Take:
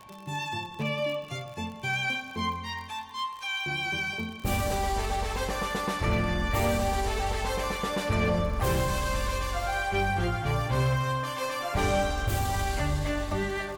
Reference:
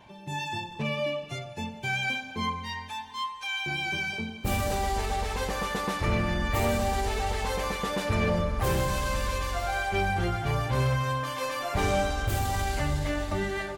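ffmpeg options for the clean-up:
ffmpeg -i in.wav -af "adeclick=threshold=4,bandreject=frequency=1100:width=30" out.wav

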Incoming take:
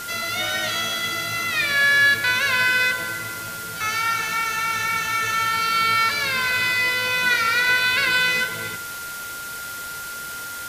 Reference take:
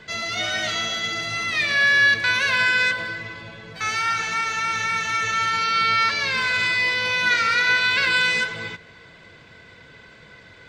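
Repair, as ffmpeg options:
ffmpeg -i in.wav -af "bandreject=frequency=1400:width=30,afwtdn=0.018" out.wav

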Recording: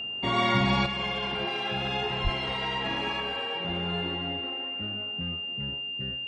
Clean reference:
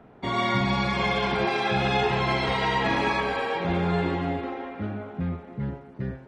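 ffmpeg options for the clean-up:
ffmpeg -i in.wav -filter_complex "[0:a]bandreject=frequency=2800:width=30,asplit=3[link_01][link_02][link_03];[link_01]afade=type=out:start_time=2.23:duration=0.02[link_04];[link_02]highpass=frequency=140:width=0.5412,highpass=frequency=140:width=1.3066,afade=type=in:start_time=2.23:duration=0.02,afade=type=out:start_time=2.35:duration=0.02[link_05];[link_03]afade=type=in:start_time=2.35:duration=0.02[link_06];[link_04][link_05][link_06]amix=inputs=3:normalize=0,asetnsamples=nb_out_samples=441:pad=0,asendcmd='0.86 volume volume 8dB',volume=0dB" out.wav

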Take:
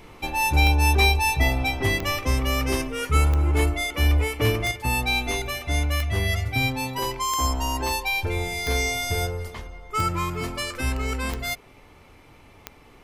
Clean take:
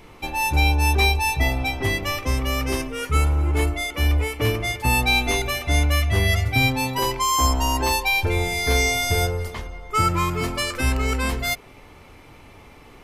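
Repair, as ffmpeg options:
ffmpeg -i in.wav -af "adeclick=threshold=4,asetnsamples=nb_out_samples=441:pad=0,asendcmd='4.71 volume volume 4.5dB',volume=0dB" out.wav

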